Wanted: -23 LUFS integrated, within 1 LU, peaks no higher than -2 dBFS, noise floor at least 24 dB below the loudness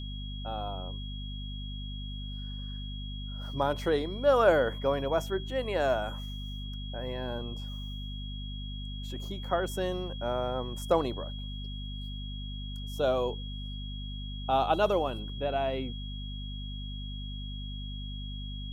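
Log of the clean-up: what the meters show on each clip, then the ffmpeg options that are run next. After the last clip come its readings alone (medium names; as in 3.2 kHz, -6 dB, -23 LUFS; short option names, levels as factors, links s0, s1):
hum 50 Hz; highest harmonic 250 Hz; hum level -36 dBFS; steady tone 3.3 kHz; tone level -44 dBFS; loudness -33.0 LUFS; peak level -11.5 dBFS; loudness target -23.0 LUFS
-> -af "bandreject=f=50:t=h:w=4,bandreject=f=100:t=h:w=4,bandreject=f=150:t=h:w=4,bandreject=f=200:t=h:w=4,bandreject=f=250:t=h:w=4"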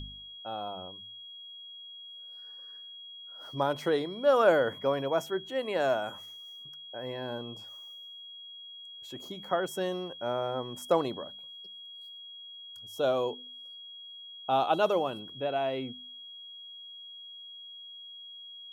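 hum not found; steady tone 3.3 kHz; tone level -44 dBFS
-> -af "bandreject=f=3300:w=30"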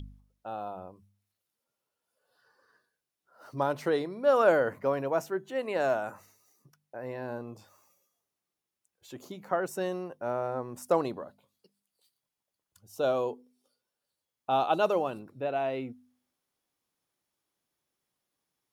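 steady tone not found; loudness -30.5 LUFS; peak level -11.5 dBFS; loudness target -23.0 LUFS
-> -af "volume=2.37"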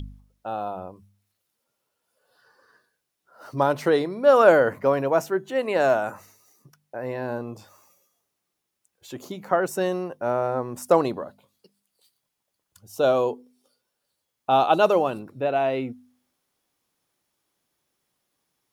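loudness -23.0 LUFS; peak level -4.0 dBFS; noise floor -80 dBFS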